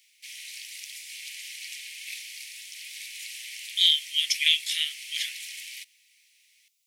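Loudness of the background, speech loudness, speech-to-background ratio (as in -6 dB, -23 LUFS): -38.0 LUFS, -23.5 LUFS, 14.5 dB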